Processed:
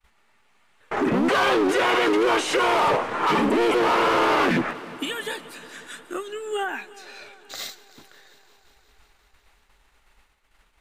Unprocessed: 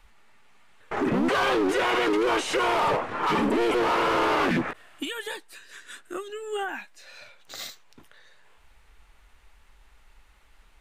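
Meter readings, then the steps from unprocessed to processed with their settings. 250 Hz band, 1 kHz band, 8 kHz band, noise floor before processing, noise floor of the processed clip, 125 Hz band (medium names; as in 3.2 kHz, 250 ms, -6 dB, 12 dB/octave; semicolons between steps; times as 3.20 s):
+3.0 dB, +3.5 dB, +3.5 dB, -57 dBFS, -63 dBFS, +1.5 dB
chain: expander -49 dBFS; bass shelf 91 Hz -8 dB; multi-head delay 179 ms, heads first and second, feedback 69%, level -23 dB; trim +3.5 dB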